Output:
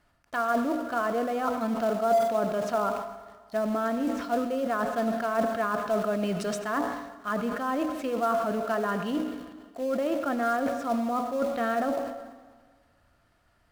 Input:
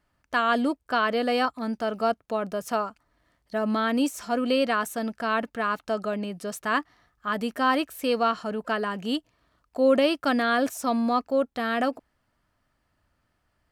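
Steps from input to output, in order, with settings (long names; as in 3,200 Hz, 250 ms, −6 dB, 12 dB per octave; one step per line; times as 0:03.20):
treble cut that deepens with the level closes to 1,400 Hz, closed at −23 dBFS
hum removal 62.04 Hz, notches 16
reversed playback
downward compressor 10 to 1, threshold −35 dBFS, peak gain reduction 19 dB
reversed playback
hollow resonant body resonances 680/1,400/3,800 Hz, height 8 dB, ringing for 60 ms
in parallel at −7.5 dB: log-companded quantiser 4 bits
on the sum: convolution reverb RT60 1.7 s, pre-delay 70 ms, DRR 11 dB
level that may fall only so fast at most 57 dB per second
level +5 dB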